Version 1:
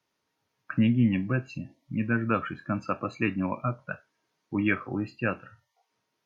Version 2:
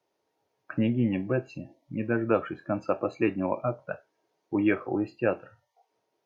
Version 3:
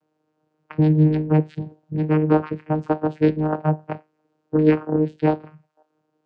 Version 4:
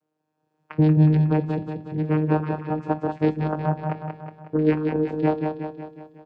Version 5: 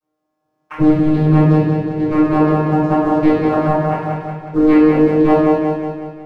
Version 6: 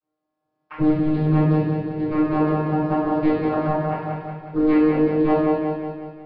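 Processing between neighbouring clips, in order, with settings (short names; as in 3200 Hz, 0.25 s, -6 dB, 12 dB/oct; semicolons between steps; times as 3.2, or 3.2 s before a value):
band shelf 530 Hz +11 dB; gain -4 dB
vocoder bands 8, saw 154 Hz; gain +9 dB
AGC gain up to 12.5 dB; feedback echo 0.183 s, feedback 54%, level -5 dB; gain -7 dB
sample leveller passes 1; reverb RT60 0.95 s, pre-delay 3 ms, DRR -15.5 dB; gain -10 dB
downsampling 11025 Hz; gain -6.5 dB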